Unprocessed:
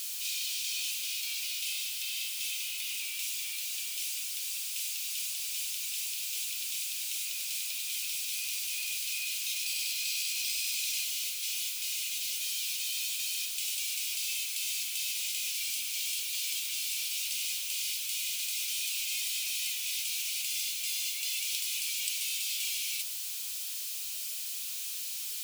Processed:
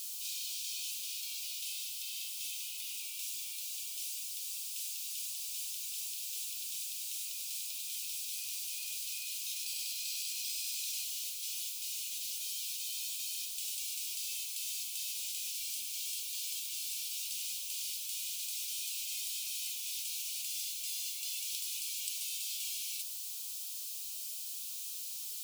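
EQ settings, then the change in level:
phaser with its sweep stopped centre 470 Hz, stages 6
−4.0 dB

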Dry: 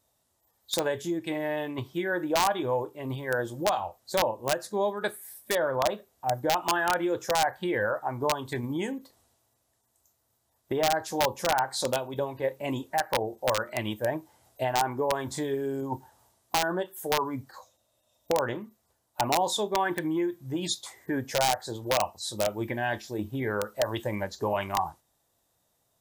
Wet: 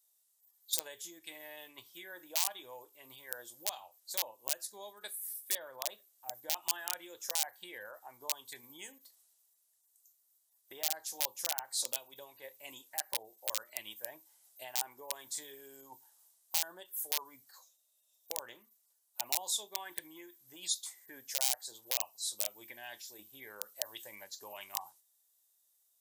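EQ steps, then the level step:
dynamic equaliser 1,400 Hz, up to −6 dB, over −44 dBFS, Q 1.8
first difference
0.0 dB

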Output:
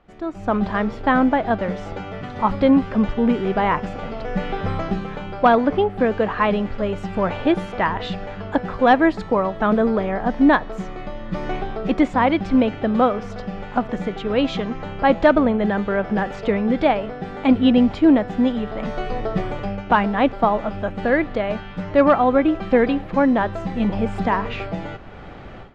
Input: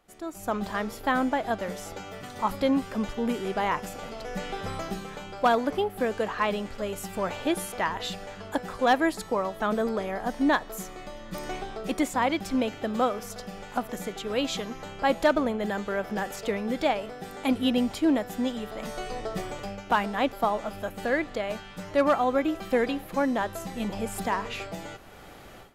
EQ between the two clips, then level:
high-frequency loss of the air 140 metres
bass and treble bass +5 dB, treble −6 dB
high-shelf EQ 7,000 Hz −6 dB
+8.0 dB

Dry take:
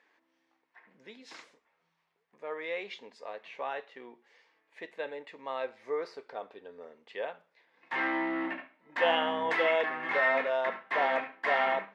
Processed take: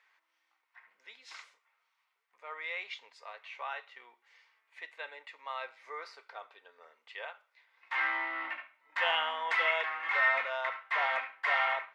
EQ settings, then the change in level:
high-pass filter 1,100 Hz 12 dB per octave
parametric band 1,500 Hz +4.5 dB 1.3 octaves
notch filter 1,700 Hz, Q 7.5
0.0 dB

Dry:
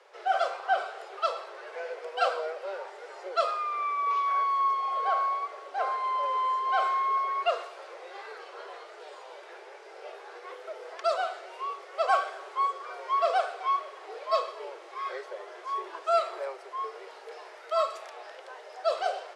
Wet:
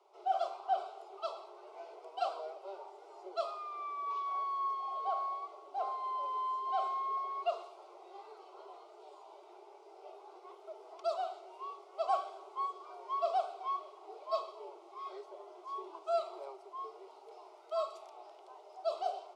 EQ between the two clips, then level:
tilt shelving filter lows +5.5 dB, about 1,100 Hz
dynamic equaliser 3,800 Hz, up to +4 dB, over −49 dBFS, Q 1.2
phaser with its sweep stopped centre 340 Hz, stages 8
−7.0 dB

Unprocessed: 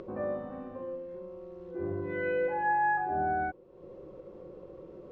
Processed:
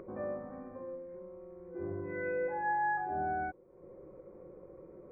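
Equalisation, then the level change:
linear-phase brick-wall low-pass 2,500 Hz
−4.5 dB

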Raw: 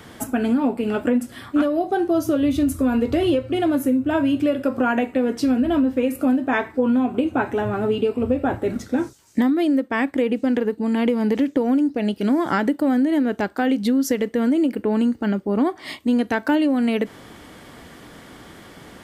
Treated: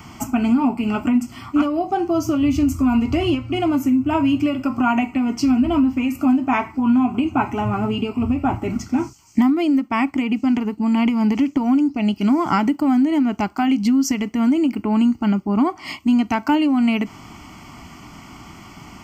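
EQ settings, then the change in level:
phaser with its sweep stopped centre 2,500 Hz, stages 8
+6.0 dB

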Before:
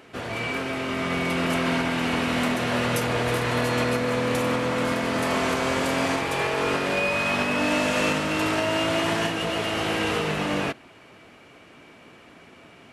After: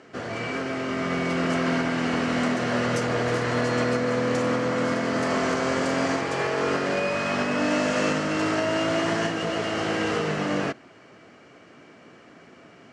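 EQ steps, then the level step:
loudspeaker in its box 110–7,300 Hz, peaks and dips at 920 Hz −5 dB, 2,500 Hz −7 dB, 3,600 Hz −8 dB
+1.0 dB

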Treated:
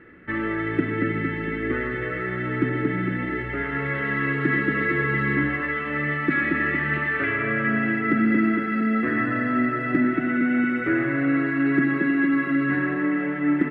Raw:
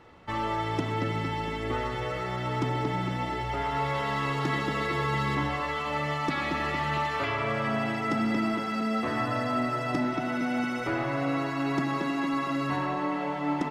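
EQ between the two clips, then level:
drawn EQ curve 110 Hz 0 dB, 160 Hz +5 dB, 240 Hz +8 dB, 340 Hz +10 dB, 910 Hz −13 dB, 1,700 Hz +14 dB, 5,900 Hz −27 dB, 9,500 Hz −12 dB
0.0 dB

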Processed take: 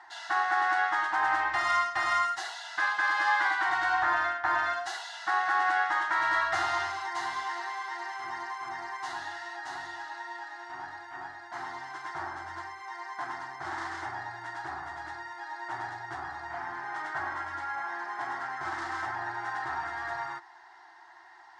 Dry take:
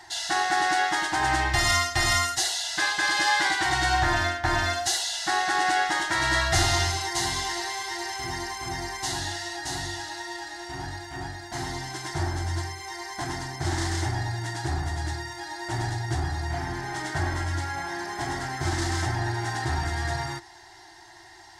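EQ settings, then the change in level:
resonant band-pass 1,200 Hz, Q 2.4
+3.5 dB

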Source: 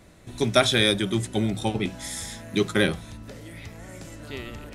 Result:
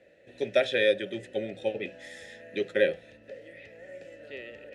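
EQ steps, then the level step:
formant filter e
parametric band 67 Hz +3.5 dB 2.2 octaves
+6.5 dB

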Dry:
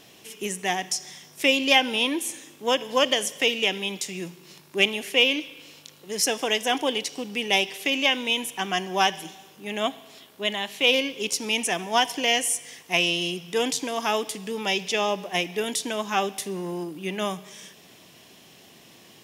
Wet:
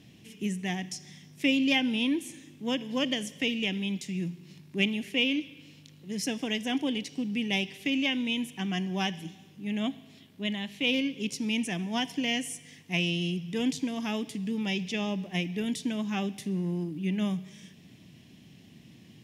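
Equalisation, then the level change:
high-pass filter 78 Hz
spectral tilt −3.5 dB per octave
flat-topped bell 730 Hz −11.5 dB 2.3 octaves
−2.5 dB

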